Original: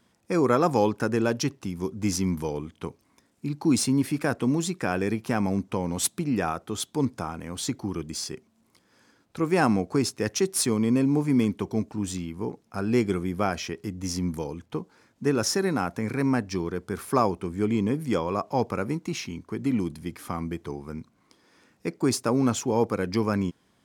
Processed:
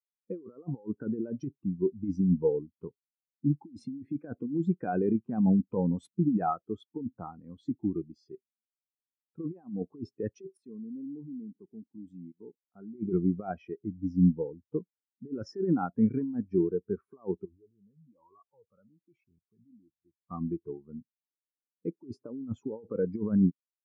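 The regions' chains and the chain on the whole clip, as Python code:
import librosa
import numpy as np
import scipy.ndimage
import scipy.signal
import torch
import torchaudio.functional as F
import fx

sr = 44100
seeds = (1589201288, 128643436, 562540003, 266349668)

y = fx.chain(x, sr, fx.highpass(hz=110.0, slope=12),
    fx.level_steps(step_db=18), at=(10.57, 12.95))
y = fx.chain(y, sr, fx.level_steps(step_db=19),
    fx.comb_cascade(direction='rising', hz=1.2), at=(17.45, 20.31))
y = fx.bass_treble(y, sr, bass_db=-2, treble_db=-11)
y = fx.over_compress(y, sr, threshold_db=-27.0, ratio=-0.5)
y = fx.spectral_expand(y, sr, expansion=2.5)
y = F.gain(torch.from_numpy(y), -3.0).numpy()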